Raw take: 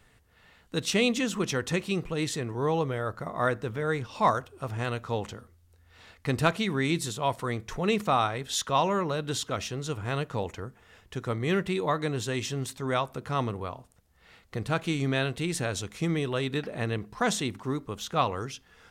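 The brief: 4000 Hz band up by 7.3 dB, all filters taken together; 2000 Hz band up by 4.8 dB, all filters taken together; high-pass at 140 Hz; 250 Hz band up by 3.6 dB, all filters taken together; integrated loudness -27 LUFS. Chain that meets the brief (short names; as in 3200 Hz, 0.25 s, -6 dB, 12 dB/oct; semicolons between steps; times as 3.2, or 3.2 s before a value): HPF 140 Hz; bell 250 Hz +5.5 dB; bell 2000 Hz +4 dB; bell 4000 Hz +7.5 dB; gain -0.5 dB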